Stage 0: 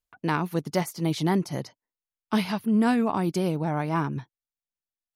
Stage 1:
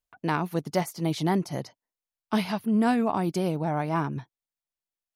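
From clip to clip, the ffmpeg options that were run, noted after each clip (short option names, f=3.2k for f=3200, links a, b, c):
-af "equalizer=f=690:t=o:w=0.55:g=4,volume=-1.5dB"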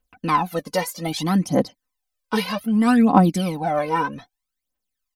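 -af "aecho=1:1:3.9:0.74,aphaser=in_gain=1:out_gain=1:delay=2.2:decay=0.75:speed=0.63:type=triangular,volume=2.5dB"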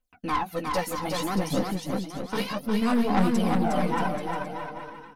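-af "flanger=delay=7.3:depth=9.9:regen=-16:speed=1.5:shape=triangular,aeval=exprs='(tanh(8.91*val(0)+0.55)-tanh(0.55))/8.91':c=same,aecho=1:1:360|630|832.5|984.4|1098:0.631|0.398|0.251|0.158|0.1"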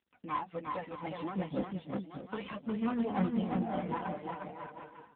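-af "tremolo=f=5.6:d=0.51,volume=-6dB" -ar 8000 -c:a libopencore_amrnb -b:a 7400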